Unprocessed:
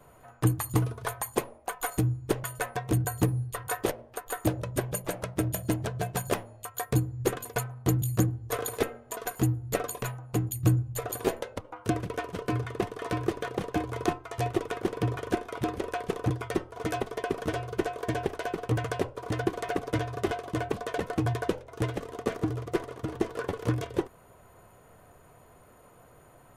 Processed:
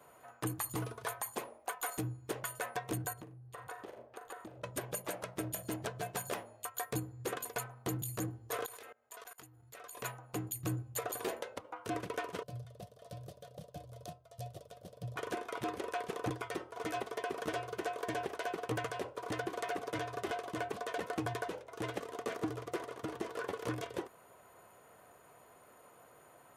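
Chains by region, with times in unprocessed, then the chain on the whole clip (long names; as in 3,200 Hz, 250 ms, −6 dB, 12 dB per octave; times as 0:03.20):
0:03.13–0:04.64: low-pass filter 1,600 Hz 6 dB per octave + flutter between parallel walls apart 6.9 metres, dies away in 0.21 s + downward compressor 12 to 1, threshold −38 dBFS
0:08.66–0:09.97: parametric band 230 Hz −11 dB 2.6 octaves + output level in coarse steps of 24 dB
0:12.43–0:15.16: drawn EQ curve 160 Hz 0 dB, 260 Hz −19 dB, 370 Hz −27 dB, 600 Hz −4 dB, 860 Hz −24 dB, 2,200 Hz −24 dB, 3,400 Hz −11 dB, 4,900 Hz −7 dB, 6,900 Hz −9 dB, 13,000 Hz −3 dB + one half of a high-frequency compander decoder only
whole clip: high-pass filter 440 Hz 6 dB per octave; brickwall limiter −24 dBFS; level −1.5 dB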